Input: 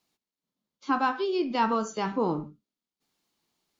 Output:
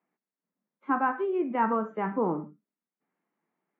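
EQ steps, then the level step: elliptic band-pass 170–2000 Hz, stop band 40 dB; 0.0 dB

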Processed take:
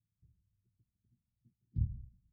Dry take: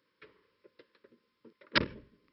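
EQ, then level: inverse Chebyshev low-pass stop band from 520 Hz, stop band 70 dB; +12.0 dB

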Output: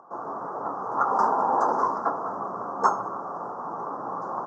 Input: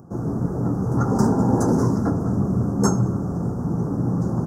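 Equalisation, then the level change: resonant high-pass 680 Hz, resonance Q 1.5; distance through air 180 m; peaking EQ 1.1 kHz +12.5 dB 0.71 oct; -2.5 dB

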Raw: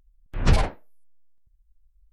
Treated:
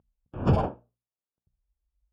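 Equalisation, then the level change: boxcar filter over 22 samples; high-pass 110 Hz 12 dB/octave; hum notches 60/120/180/240 Hz; +3.0 dB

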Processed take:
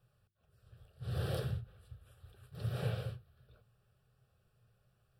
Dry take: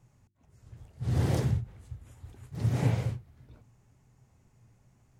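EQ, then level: bass shelf 200 Hz -9 dB; peaking EQ 700 Hz -5 dB 0.42 oct; static phaser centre 1.4 kHz, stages 8; -1.0 dB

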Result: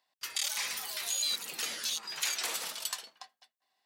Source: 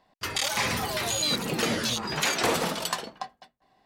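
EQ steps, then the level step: differentiator; treble shelf 6.4 kHz -7.5 dB; +2.0 dB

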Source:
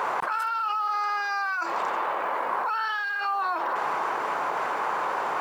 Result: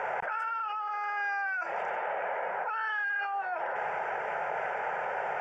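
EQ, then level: distance through air 140 m; static phaser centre 1.1 kHz, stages 6; 0.0 dB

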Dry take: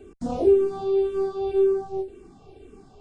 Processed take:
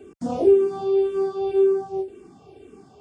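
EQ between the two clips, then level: high-pass 110 Hz 12 dB/octave; band-stop 4 kHz, Q 11; +2.0 dB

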